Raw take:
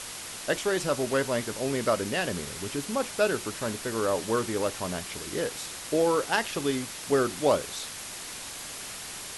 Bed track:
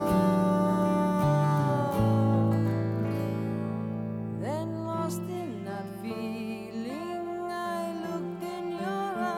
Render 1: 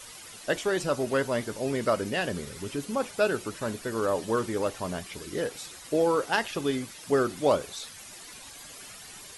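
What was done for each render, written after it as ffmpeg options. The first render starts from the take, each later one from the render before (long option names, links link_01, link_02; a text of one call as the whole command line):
ffmpeg -i in.wav -af "afftdn=noise_reduction=11:noise_floor=-40" out.wav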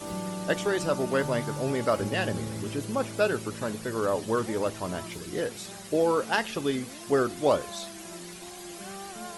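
ffmpeg -i in.wav -i bed.wav -filter_complex "[1:a]volume=-10.5dB[link_01];[0:a][link_01]amix=inputs=2:normalize=0" out.wav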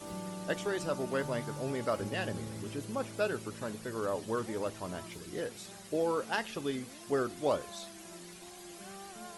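ffmpeg -i in.wav -af "volume=-7dB" out.wav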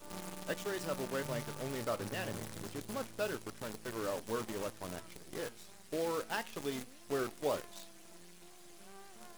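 ffmpeg -i in.wav -af "acrusher=bits=7:dc=4:mix=0:aa=0.000001,flanger=delay=2:depth=6.7:regen=86:speed=0.27:shape=triangular" out.wav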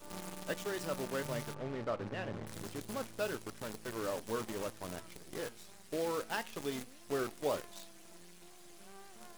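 ffmpeg -i in.wav -filter_complex "[0:a]asplit=3[link_01][link_02][link_03];[link_01]afade=type=out:start_time=1.53:duration=0.02[link_04];[link_02]adynamicsmooth=sensitivity=4:basefreq=2200,afade=type=in:start_time=1.53:duration=0.02,afade=type=out:start_time=2.46:duration=0.02[link_05];[link_03]afade=type=in:start_time=2.46:duration=0.02[link_06];[link_04][link_05][link_06]amix=inputs=3:normalize=0" out.wav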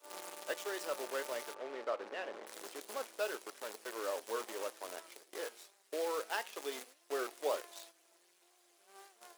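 ffmpeg -i in.wav -af "highpass=frequency=390:width=0.5412,highpass=frequency=390:width=1.3066,agate=range=-10dB:threshold=-55dB:ratio=16:detection=peak" out.wav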